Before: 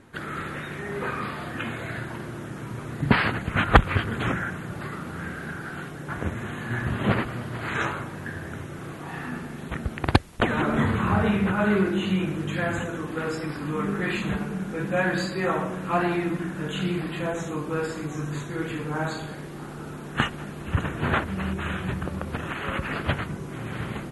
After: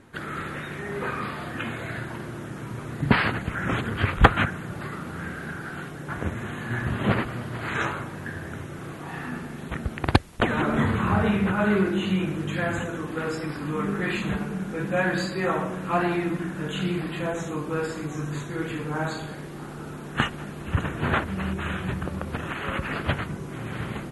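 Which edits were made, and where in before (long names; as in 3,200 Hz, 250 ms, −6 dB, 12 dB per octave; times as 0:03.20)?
0:03.55–0:04.46: reverse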